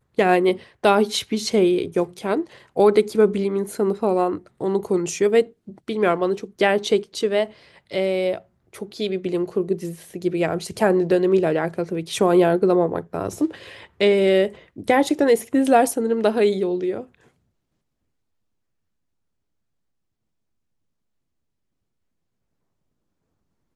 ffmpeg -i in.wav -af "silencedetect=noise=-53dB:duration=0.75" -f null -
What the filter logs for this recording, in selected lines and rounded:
silence_start: 17.30
silence_end: 23.76 | silence_duration: 6.45